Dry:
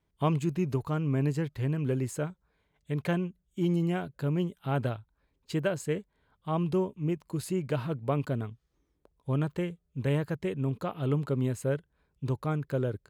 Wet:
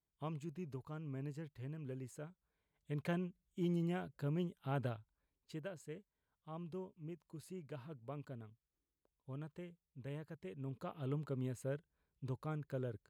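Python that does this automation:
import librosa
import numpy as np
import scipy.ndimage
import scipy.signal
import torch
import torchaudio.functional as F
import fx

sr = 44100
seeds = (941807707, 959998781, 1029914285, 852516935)

y = fx.gain(x, sr, db=fx.line((2.26, -17.0), (2.97, -9.5), (4.92, -9.5), (5.74, -18.5), (10.37, -18.5), (10.88, -12.0)))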